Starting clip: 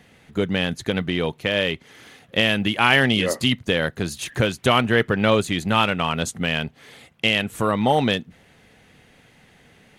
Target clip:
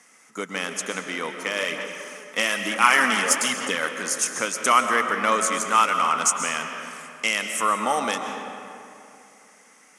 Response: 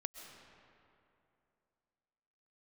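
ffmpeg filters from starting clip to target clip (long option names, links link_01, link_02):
-filter_complex "[0:a]highpass=frequency=230:width=0.5412,highpass=frequency=230:width=1.3066,equalizer=frequency=370:width_type=q:width=4:gain=-4,equalizer=frequency=1300:width_type=q:width=4:gain=7,equalizer=frequency=2100:width_type=q:width=4:gain=8,equalizer=frequency=5500:width_type=q:width=4:gain=8,lowpass=frequency=9700:width=0.5412,lowpass=frequency=9700:width=1.3066,aexciter=amount=11.3:drive=3.6:freq=5800,equalizer=frequency=1100:width_type=o:width=0.63:gain=9.5[link_01];[1:a]atrim=start_sample=2205[link_02];[link_01][link_02]afir=irnorm=-1:irlink=0,asplit=3[link_03][link_04][link_05];[link_03]afade=type=out:start_time=1.56:duration=0.02[link_06];[link_04]aphaser=in_gain=1:out_gain=1:delay=4.8:decay=0.37:speed=1.1:type=sinusoidal,afade=type=in:start_time=1.56:duration=0.02,afade=type=out:start_time=3.88:duration=0.02[link_07];[link_05]afade=type=in:start_time=3.88:duration=0.02[link_08];[link_06][link_07][link_08]amix=inputs=3:normalize=0,volume=-5dB"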